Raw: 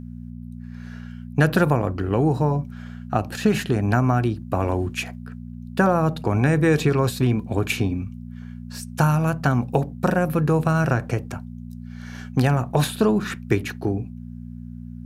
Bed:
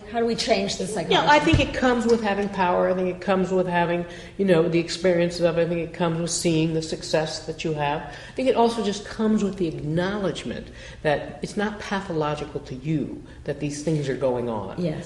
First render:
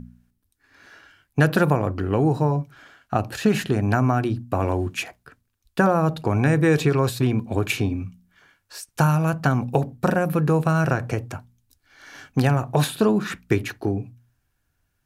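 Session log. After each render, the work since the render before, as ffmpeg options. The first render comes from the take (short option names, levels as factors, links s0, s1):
-af "bandreject=f=60:t=h:w=4,bandreject=f=120:t=h:w=4,bandreject=f=180:t=h:w=4,bandreject=f=240:t=h:w=4"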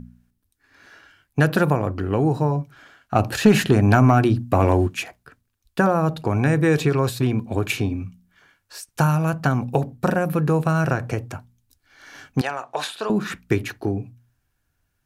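-filter_complex "[0:a]asplit=3[s0][s1][s2];[s0]afade=t=out:st=3.15:d=0.02[s3];[s1]acontrast=54,afade=t=in:st=3.15:d=0.02,afade=t=out:st=4.86:d=0.02[s4];[s2]afade=t=in:st=4.86:d=0.02[s5];[s3][s4][s5]amix=inputs=3:normalize=0,asettb=1/sr,asplit=3[s6][s7][s8];[s6]atrim=end=12.414[s9];[s7]atrim=start=12.41:end=13.1,asetpts=PTS-STARTPTS,afade=t=in:d=0.004:c=qsin,afade=t=out:st=0.686:d=0.004:c=qsin,highpass=660,lowpass=7200[s10];[s8]atrim=start=13.096[s11];[s9][s10]acrossfade=d=0.004:c1=hsin:c2=qsin[s12];[s12][s11]acrossfade=d=0.004:c1=qsin:c2=hsin"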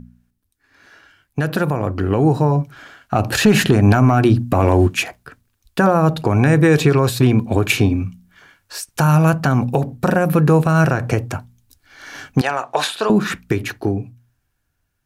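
-af "alimiter=limit=0.251:level=0:latency=1:release=170,dynaudnorm=f=400:g=9:m=2.82"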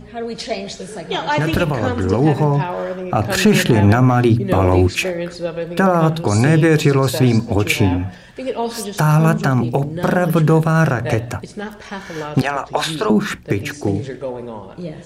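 -filter_complex "[1:a]volume=0.708[s0];[0:a][s0]amix=inputs=2:normalize=0"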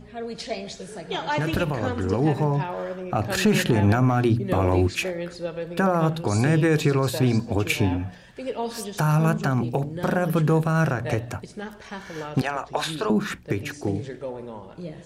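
-af "volume=0.447"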